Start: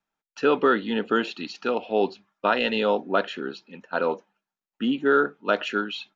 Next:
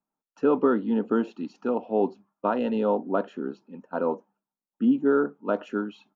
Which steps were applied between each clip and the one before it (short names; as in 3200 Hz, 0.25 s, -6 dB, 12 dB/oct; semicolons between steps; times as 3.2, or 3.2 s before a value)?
ten-band EQ 125 Hz +6 dB, 250 Hz +11 dB, 500 Hz +4 dB, 1000 Hz +8 dB, 2000 Hz -8 dB, 4000 Hz -11 dB; gain -9 dB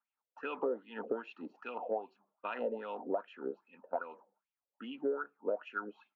wah 2.5 Hz 480–2700 Hz, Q 5.3; compressor 4:1, threshold -43 dBFS, peak gain reduction 15 dB; gain +9.5 dB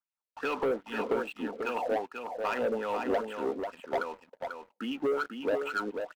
sample leveller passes 3; echo 0.492 s -6 dB; gain -1.5 dB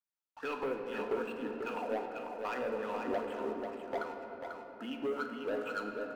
shoebox room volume 210 m³, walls hard, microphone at 0.33 m; gain -7 dB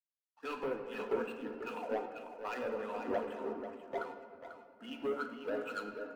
bin magnitudes rounded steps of 15 dB; three-band expander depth 70%; gain -1.5 dB